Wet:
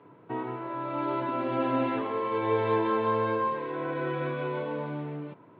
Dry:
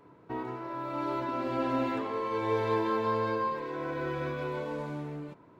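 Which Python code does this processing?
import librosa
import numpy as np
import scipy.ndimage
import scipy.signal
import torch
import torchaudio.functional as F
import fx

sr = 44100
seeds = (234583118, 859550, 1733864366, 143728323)

y = scipy.signal.sosfilt(scipy.signal.ellip(3, 1.0, 40, [110.0, 3300.0], 'bandpass', fs=sr, output='sos'), x)
y = F.gain(torch.from_numpy(y), 3.0).numpy()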